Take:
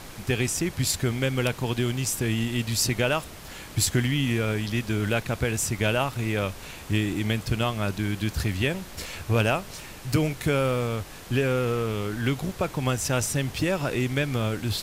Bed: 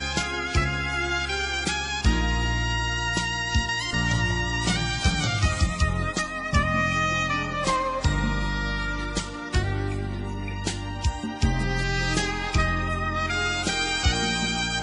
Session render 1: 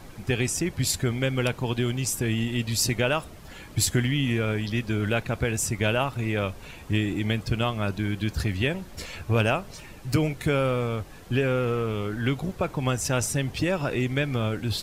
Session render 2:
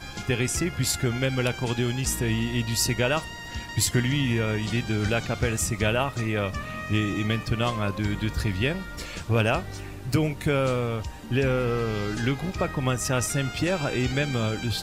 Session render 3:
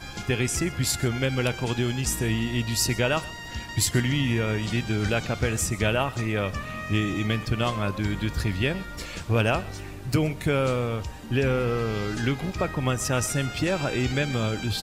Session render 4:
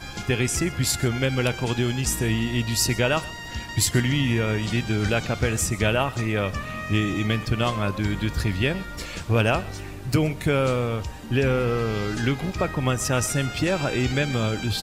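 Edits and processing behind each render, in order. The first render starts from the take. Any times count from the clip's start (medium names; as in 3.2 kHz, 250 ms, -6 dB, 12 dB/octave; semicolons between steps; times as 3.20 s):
noise reduction 9 dB, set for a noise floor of -42 dBFS
add bed -11.5 dB
delay 128 ms -20.5 dB
trim +2 dB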